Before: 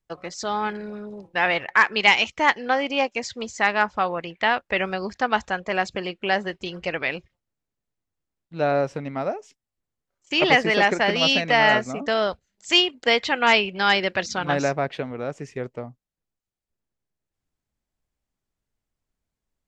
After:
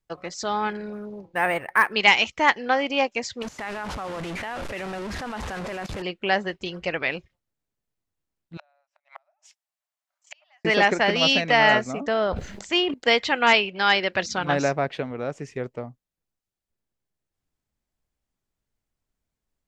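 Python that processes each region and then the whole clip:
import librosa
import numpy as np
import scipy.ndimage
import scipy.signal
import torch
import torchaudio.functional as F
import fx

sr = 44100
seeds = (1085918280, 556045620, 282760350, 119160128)

y = fx.chain(x, sr, fx.peak_eq(hz=3700.0, db=-11.5, octaves=0.94),
    fx.quant_companded(bits=8),
    fx.resample_linear(factor=4), at=(0.93, 1.93))
y = fx.chain(y, sr, fx.delta_mod(bps=64000, step_db=-22.0),
    fx.lowpass(hz=2100.0, slope=6),
    fx.level_steps(step_db=16), at=(3.42, 6.02))
y = fx.chain(y, sr, fx.gate_flip(shuts_db=-20.0, range_db=-42),
    fx.brickwall_highpass(low_hz=570.0), at=(8.57, 10.65))
y = fx.chain(y, sr, fx.lowpass(hz=1600.0, slope=6),
    fx.sustainer(db_per_s=50.0), at=(12.08, 12.94))
y = fx.chain(y, sr, fx.lowpass(hz=6400.0, slope=12),
    fx.low_shelf(hz=230.0, db=-7.0), at=(13.53, 14.13))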